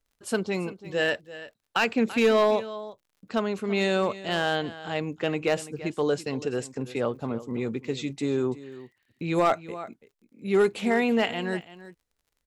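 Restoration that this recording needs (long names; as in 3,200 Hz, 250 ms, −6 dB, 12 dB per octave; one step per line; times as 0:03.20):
clipped peaks rebuilt −14.5 dBFS
click removal
echo removal 336 ms −16 dB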